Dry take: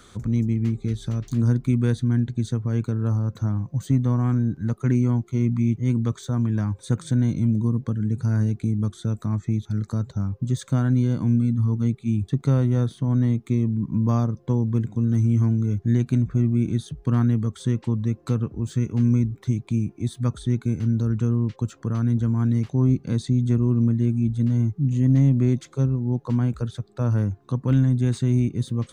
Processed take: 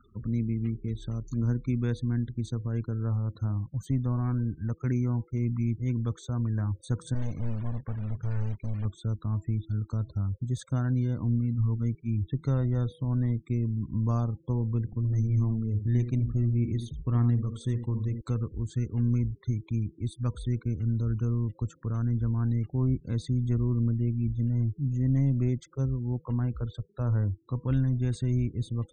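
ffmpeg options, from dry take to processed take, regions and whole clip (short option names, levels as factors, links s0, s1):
-filter_complex "[0:a]asettb=1/sr,asplit=3[s0][s1][s2];[s0]atrim=end=7.144[s3];[s1]atrim=start=7.14:end=8.85,asetpts=PTS-STARTPTS,afade=t=in:d=0.004:c=qsin,afade=t=out:st=1.706:d=0.004:c=qsin,equalizer=f=230:t=o:w=2.4:g=-3.5,acrusher=bits=3:mode=log:mix=0:aa=0.000001,asoftclip=type=hard:threshold=0.075[s4];[s2]atrim=start=8.846[s5];[s3][s4]acrossfade=d=0.004:c1=hsin:c2=qsin[s6];[s6][s5]acrossfade=d=0.004:c1=qsin:c2=hsin,asettb=1/sr,asplit=3[s7][s8][s9];[s7]atrim=end=14.854[s10];[s8]atrim=start=14.85:end=18.21,asetpts=PTS-STARTPTS,afade=t=in:d=0.004:c=qsin,afade=t=out:st=3.356:d=0.004:c=qsin,bandreject=f=1500:w=6.5,bandreject=f=231.8:t=h:w=4,bandreject=f=463.6:t=h:w=4,bandreject=f=695.4:t=h:w=4,bandreject=f=927.2:t=h:w=4,aecho=1:1:76:0.355,atrim=end_sample=148176[s11];[s9]atrim=start=18.206[s12];[s10][s11]acrossfade=d=0.004:c1=hsin:c2=qsin[s13];[s13][s12]acrossfade=d=0.004:c1=qsin:c2=hsin,bandreject=f=163:t=h:w=4,bandreject=f=326:t=h:w=4,bandreject=f=489:t=h:w=4,bandreject=f=652:t=h:w=4,bandreject=f=815:t=h:w=4,bandreject=f=978:t=h:w=4,afftfilt=real='re*gte(hypot(re,im),0.00891)':imag='im*gte(hypot(re,im),0.00891)':win_size=1024:overlap=0.75,asubboost=boost=5.5:cutoff=67,volume=0.501"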